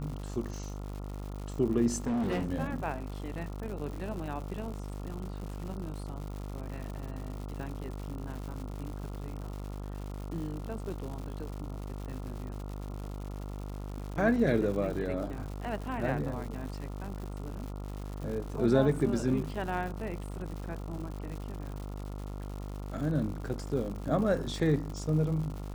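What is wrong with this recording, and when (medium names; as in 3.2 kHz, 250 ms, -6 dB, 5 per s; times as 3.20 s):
buzz 50 Hz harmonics 28 -39 dBFS
crackle 200 per s -39 dBFS
2.06–2.50 s: clipped -27.5 dBFS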